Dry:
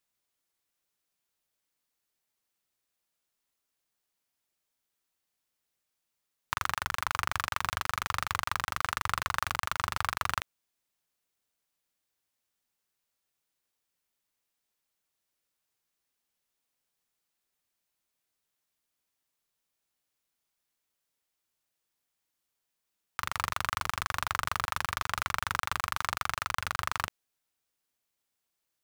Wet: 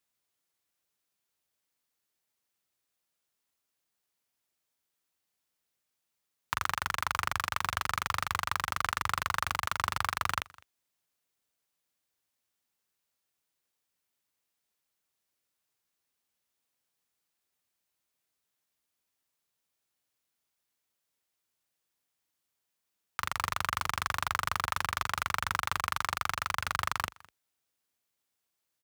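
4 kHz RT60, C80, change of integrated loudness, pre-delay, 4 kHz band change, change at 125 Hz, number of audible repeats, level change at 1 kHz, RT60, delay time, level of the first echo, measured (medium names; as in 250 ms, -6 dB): no reverb, no reverb, 0.0 dB, no reverb, 0.0 dB, +0.5 dB, 1, +0.5 dB, no reverb, 206 ms, -24.0 dB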